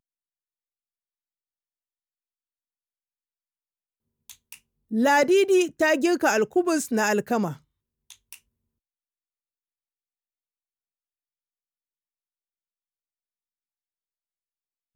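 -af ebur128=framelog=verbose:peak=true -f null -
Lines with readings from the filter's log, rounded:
Integrated loudness:
  I:         -22.1 LUFS
  Threshold: -33.8 LUFS
Loudness range:
  LRA:        11.0 LU
  Threshold: -46.0 LUFS
  LRA low:   -33.3 LUFS
  LRA high:  -22.2 LUFS
True peak:
  Peak:      -10.1 dBFS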